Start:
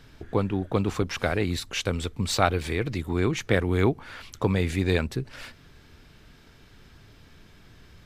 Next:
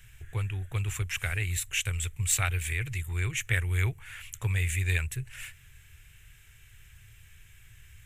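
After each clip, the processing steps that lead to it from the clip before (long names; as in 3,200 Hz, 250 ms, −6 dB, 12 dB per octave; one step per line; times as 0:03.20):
drawn EQ curve 120 Hz 0 dB, 240 Hz −30 dB, 360 Hz −18 dB, 570 Hz −20 dB, 1,200 Hz −12 dB, 1,800 Hz 0 dB, 2,700 Hz +3 dB, 4,700 Hz −14 dB, 7,300 Hz +9 dB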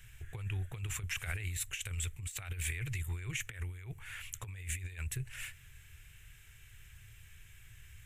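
compressor whose output falls as the input rises −32 dBFS, ratio −0.5
level −5.5 dB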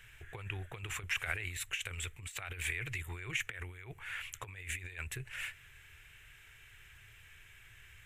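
bass and treble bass −12 dB, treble −10 dB
level +5.5 dB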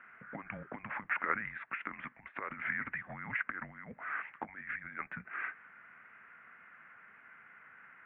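single-sideband voice off tune −210 Hz 340–2,100 Hz
level +6 dB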